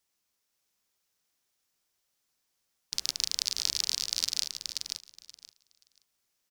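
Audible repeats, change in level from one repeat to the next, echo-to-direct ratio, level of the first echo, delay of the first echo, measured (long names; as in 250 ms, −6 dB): 2, −15.5 dB, −4.5 dB, −4.5 dB, 528 ms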